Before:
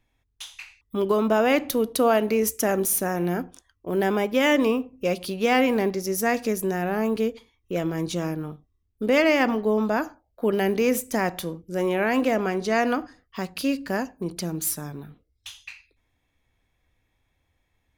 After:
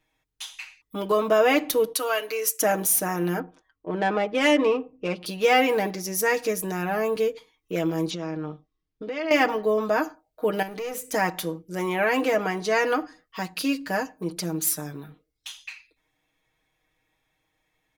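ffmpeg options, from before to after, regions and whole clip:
-filter_complex "[0:a]asettb=1/sr,asplit=3[a][b][c];[a]atrim=end=1.934[d];[b]atrim=start=1.93:end=2.61,asetpts=PTS-STARTPTS,afade=t=in:d=0.004:c=qsin,afade=t=out:st=0.676:d=0.004:c=qsin,highpass=f=1.4k:p=1,aecho=1:1:7.1:0.43,atrim=end_sample=29988[e];[c]atrim=start=2.606[f];[d][e]acrossfade=d=0.004:c1=hsin:c2=qsin[g];[g][f]acrossfade=d=0.004:c1=qsin:c2=hsin,asettb=1/sr,asplit=3[h][i][j];[h]atrim=end=3.394[k];[i]atrim=start=3.39:end=5.26,asetpts=PTS-STARTPTS,afade=t=in:d=0.004:c=qsin,afade=t=out:st=1.866:d=0.004:c=qsin,lowpass=11k,adynamicsmooth=sensitivity=1.5:basefreq=2.2k[l];[j]atrim=start=5.256[m];[k][l]acrossfade=d=0.004:c1=hsin:c2=qsin[n];[n][m]acrossfade=d=0.004:c1=qsin:c2=hsin,asettb=1/sr,asplit=3[o][p][q];[o]atrim=end=8.104[r];[p]atrim=start=8.1:end=9.31,asetpts=PTS-STARTPTS,afade=t=in:d=0.004:c=qsin,afade=t=out:st=1.206:d=0.004:c=qsin,lowpass=f=5.7k:w=0.5412,lowpass=f=5.7k:w=1.3066,acompressor=threshold=-28dB:ratio=6:attack=3.2:release=140:knee=1:detection=peak[s];[q]atrim=start=9.306[t];[r][s]acrossfade=d=0.004:c1=hsin:c2=qsin[u];[u][t]acrossfade=d=0.004:c1=qsin:c2=hsin,asettb=1/sr,asplit=3[v][w][x];[v]atrim=end=10.624[y];[w]atrim=start=10.62:end=11.09,asetpts=PTS-STARTPTS,afade=t=in:d=0.004:c=qsin,afade=t=out:st=0.466:d=0.004:c=qsin,aeval=exprs='clip(val(0),-1,0.0794)':c=same,acompressor=threshold=-32dB:ratio=3:attack=3.2:release=140:knee=1:detection=peak[z];[x]atrim=start=11.086[aa];[y][z]acrossfade=d=0.004:c1=hsin:c2=qsin[ab];[ab][aa]acrossfade=d=0.004:c1=qsin:c2=hsin,lowshelf=f=160:g=-12,aecho=1:1:6.4:0.8"

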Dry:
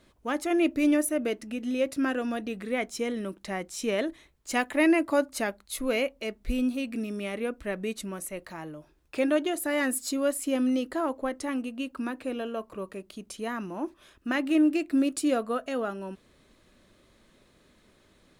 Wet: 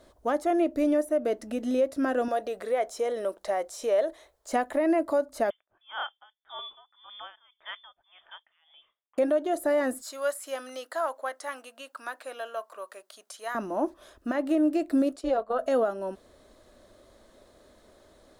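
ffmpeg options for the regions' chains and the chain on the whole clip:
-filter_complex "[0:a]asettb=1/sr,asplit=3[a][b][c];[a]atrim=end=2.284[d];[b]atrim=start=2.28:end=4.53,asetpts=PTS-STARTPTS,afade=t=in:d=0.004:c=qsin,afade=t=out:st=2.246:d=0.004:c=qsin,lowshelf=f=360:t=q:w=1.5:g=-9.5,acompressor=threshold=-33dB:ratio=2:attack=3.2:release=140:knee=1:detection=peak[e];[c]atrim=start=4.526[f];[d][e]acrossfade=d=0.004:c1=hsin:c2=qsin[g];[g][f]acrossfade=d=0.004:c1=qsin:c2=hsin,asettb=1/sr,asplit=3[h][i][j];[h]atrim=end=5.504[k];[i]atrim=start=5.5:end=9.18,asetpts=PTS-STARTPTS,afade=t=in:d=0.004:c=qsin,afade=t=out:st=3.676:d=0.004:c=qsin,highpass=f=1.1k:p=1,lowpass=f=3.1k:t=q:w=0.5098,lowpass=f=3.1k:t=q:w=0.6013,lowpass=f=3.1k:t=q:w=0.9,lowpass=f=3.1k:t=q:w=2.563,afreqshift=-3700,aeval=exprs='val(0)*pow(10,-25*(0.5-0.5*cos(2*PI*1.8*n/s))/20)':c=same[l];[j]atrim=start=9.176[m];[k][l]acrossfade=d=0.004:c1=hsin:c2=qsin[n];[n][m]acrossfade=d=0.004:c1=qsin:c2=hsin,asettb=1/sr,asplit=3[o][p][q];[o]atrim=end=10.024[r];[p]atrim=start=10.02:end=13.55,asetpts=PTS-STARTPTS,afade=t=in:d=0.004:c=qsin,afade=t=out:st=3.526:d=0.004:c=qsin,highpass=1.1k,equalizer=f=1.5k:w=4.1:g=3[s];[q]atrim=start=13.546[t];[r][s]acrossfade=d=0.004:c1=hsin:c2=qsin[u];[u][t]acrossfade=d=0.004:c1=qsin:c2=hsin,asettb=1/sr,asplit=3[v][w][x];[v]atrim=end=15.164[y];[w]atrim=start=15.16:end=15.59,asetpts=PTS-STARTPTS,afade=t=in:d=0.004:c=qsin,afade=t=out:st=0.426:d=0.004:c=qsin,agate=range=-7dB:threshold=-34dB:ratio=16:release=100:detection=peak,acrossover=split=340 5000:gain=0.224 1 0.158[z][aa][ab];[z][aa][ab]amix=inputs=3:normalize=0,tremolo=f=260:d=0.519[ac];[x]atrim=start=15.586[ad];[y][ac]acrossfade=d=0.004:c1=hsin:c2=qsin[ae];[ae][ad]acrossfade=d=0.004:c1=qsin:c2=hsin,acrossover=split=2500[af][ag];[ag]acompressor=threshold=-41dB:ratio=4:attack=1:release=60[ah];[af][ah]amix=inputs=2:normalize=0,equalizer=f=160:t=o:w=0.67:g=-11,equalizer=f=630:t=o:w=0.67:g=9,equalizer=f=2.5k:t=o:w=0.67:g=-9,alimiter=limit=-20dB:level=0:latency=1:release=322,volume=3.5dB"

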